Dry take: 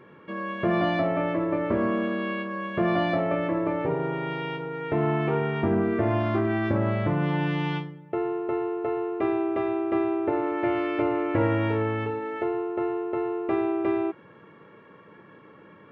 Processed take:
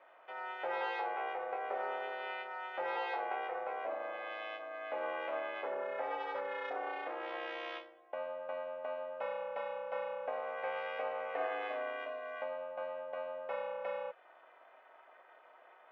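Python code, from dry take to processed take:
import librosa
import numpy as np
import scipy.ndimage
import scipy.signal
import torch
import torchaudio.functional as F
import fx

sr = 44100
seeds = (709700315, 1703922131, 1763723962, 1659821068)

y = fx.dynamic_eq(x, sr, hz=820.0, q=2.1, threshold_db=-45.0, ratio=4.0, max_db=-8)
y = y * np.sin(2.0 * np.pi * 180.0 * np.arange(len(y)) / sr)
y = fx.ladder_highpass(y, sr, hz=560.0, resonance_pct=35)
y = y * 10.0 ** (1.5 / 20.0)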